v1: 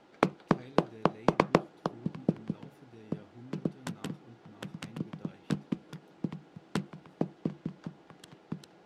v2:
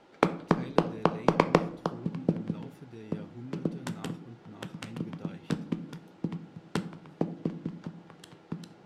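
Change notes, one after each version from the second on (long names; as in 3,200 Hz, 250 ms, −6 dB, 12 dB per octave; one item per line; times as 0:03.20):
speech +6.5 dB
reverb: on, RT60 0.55 s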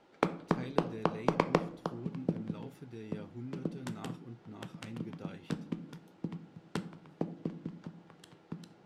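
background −5.5 dB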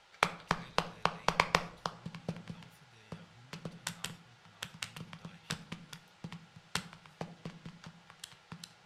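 background +12.0 dB
master: add guitar amp tone stack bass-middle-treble 10-0-10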